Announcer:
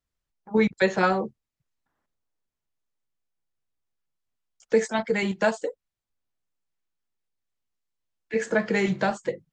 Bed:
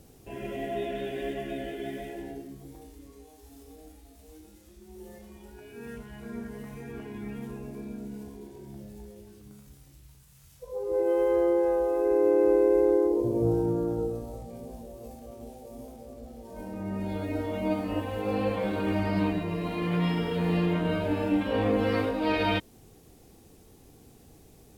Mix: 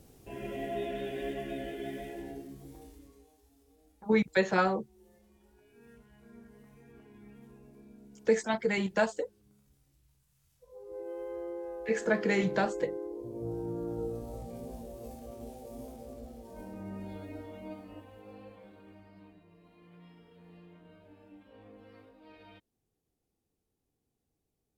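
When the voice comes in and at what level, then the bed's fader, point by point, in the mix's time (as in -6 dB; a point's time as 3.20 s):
3.55 s, -4.5 dB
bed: 2.88 s -3 dB
3.56 s -15.5 dB
13.19 s -15.5 dB
14.43 s -1 dB
16.15 s -1 dB
19.13 s -29 dB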